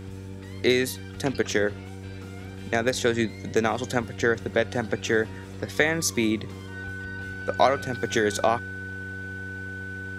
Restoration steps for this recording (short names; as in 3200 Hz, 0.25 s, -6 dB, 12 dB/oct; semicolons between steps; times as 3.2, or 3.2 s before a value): de-hum 95.6 Hz, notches 5; notch 1500 Hz, Q 30